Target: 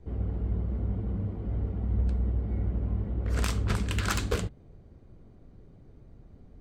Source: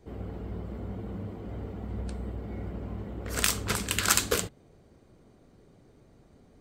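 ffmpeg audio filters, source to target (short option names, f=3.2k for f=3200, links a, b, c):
-af "aemphasis=mode=reproduction:type=bsi,aeval=exprs='0.188*(abs(mod(val(0)/0.188+3,4)-2)-1)':c=same,volume=-3dB"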